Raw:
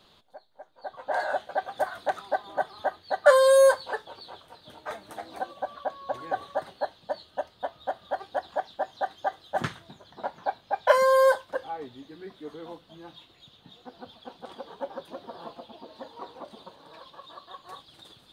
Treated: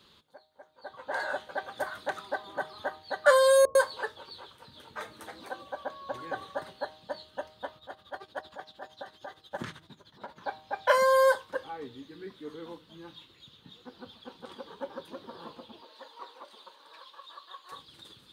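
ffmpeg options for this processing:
-filter_complex "[0:a]asettb=1/sr,asplit=3[s0][s1][s2];[s0]atrim=end=3.654[s3];[s1]atrim=start=3.65:end=5.83,asetpts=PTS-STARTPTS,afade=t=in:d=0.004:c=qsin,afade=t=out:st=2.176:d=0.004:c=qsin,acrossover=split=250[s4][s5];[s5]adelay=100[s6];[s4][s6]amix=inputs=2:normalize=0,atrim=end_sample=96138[s7];[s2]atrim=start=5.826[s8];[s3][s7]acrossfade=d=0.004:c1=hsin:c2=qsin[s9];[s9][s8]acrossfade=d=0.004:c1=qsin:c2=hsin,asettb=1/sr,asplit=3[s10][s11][s12];[s10]atrim=end=7.774[s13];[s11]atrim=start=7.77:end=10.41,asetpts=PTS-STARTPTS,afade=t=in:d=0.004:c=qsin,afade=t=out:st=2.636:d=0.004:c=qsin,tremolo=f=13:d=0.78[s14];[s12]atrim=start=10.406[s15];[s13][s14]acrossfade=d=0.004:c1=hsin:c2=qsin[s16];[s16][s15]acrossfade=d=0.004:c1=qsin:c2=hsin,asettb=1/sr,asplit=3[s17][s18][s19];[s17]atrim=end=15.814[s20];[s18]atrim=start=15.81:end=17.72,asetpts=PTS-STARTPTS,afade=t=in:d=0.004:c=qsin,afade=t=out:st=1.906:d=0.004:c=qsin,highpass=620[s21];[s19]atrim=start=17.716[s22];[s20][s21]acrossfade=d=0.004:c1=hsin:c2=qsin[s23];[s23][s22]acrossfade=d=0.004:c1=qsin:c2=hsin,highpass=48,equalizer=f=700:w=3.7:g=-13,bandreject=f=155.4:t=h:w=4,bandreject=f=310.8:t=h:w=4,bandreject=f=466.2:t=h:w=4,bandreject=f=621.6:t=h:w=4,bandreject=f=777:t=h:w=4,bandreject=f=932.4:t=h:w=4,bandreject=f=1087.8:t=h:w=4,bandreject=f=1243.2:t=h:w=4"

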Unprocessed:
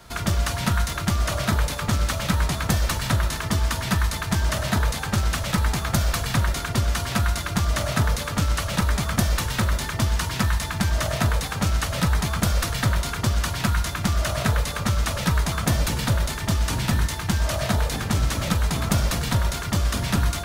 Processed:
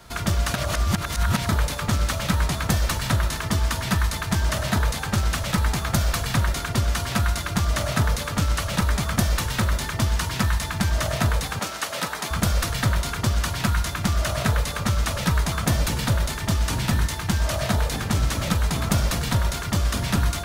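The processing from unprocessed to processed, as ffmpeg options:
-filter_complex "[0:a]asettb=1/sr,asplit=3[s0][s1][s2];[s0]atrim=end=11.594[s3];[s1]atrim=start=11.59:end=12.31,asetpts=PTS-STARTPTS,afade=t=in:d=0.004:c=qsin,afade=t=out:st=0.716:d=0.004:c=qsin,highpass=340[s4];[s2]atrim=start=12.306[s5];[s3][s4]acrossfade=d=0.004:c1=hsin:c2=qsin[s6];[s6][s5]acrossfade=d=0.004:c1=qsin:c2=hsin,asplit=3[s7][s8][s9];[s7]atrim=end=0.542[s10];[s8]atrim=start=0.538:end=1.492,asetpts=PTS-STARTPTS,areverse[s11];[s9]atrim=start=1.488[s12];[s10][s11]acrossfade=d=0.004:c1=hsin:c2=hsin[s13];[s13][s12]acrossfade=d=0.004:c1=hsin:c2=hsin"

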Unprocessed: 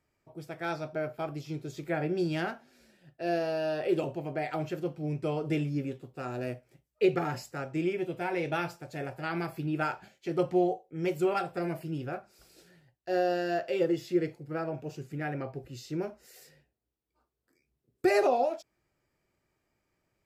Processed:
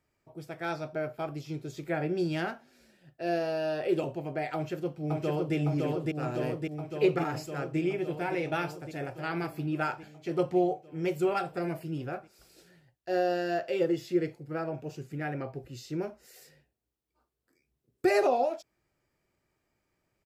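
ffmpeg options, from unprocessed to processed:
-filter_complex "[0:a]asplit=2[s0][s1];[s1]afade=t=in:st=4.54:d=0.01,afade=t=out:st=5.55:d=0.01,aecho=0:1:560|1120|1680|2240|2800|3360|3920|4480|5040|5600|6160|6720:0.841395|0.631046|0.473285|0.354964|0.266223|0.199667|0.14975|0.112313|0.0842345|0.0631759|0.0473819|0.0355364[s2];[s0][s2]amix=inputs=2:normalize=0"

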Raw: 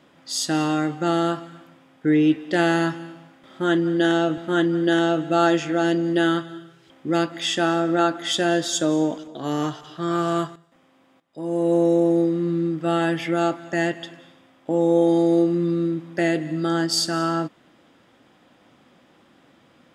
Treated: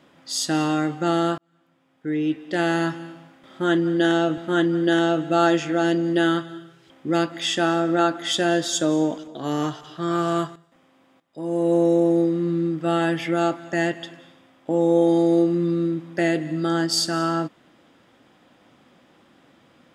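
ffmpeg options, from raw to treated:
-filter_complex "[0:a]asplit=2[s0][s1];[s0]atrim=end=1.38,asetpts=PTS-STARTPTS,afade=t=out:st=1.376:d=0.004:c=hsin[s2];[s1]atrim=start=1.38,asetpts=PTS-STARTPTS,afade=t=in:d=1.69[s3];[s2][s3]concat=n=2:v=0:a=1"

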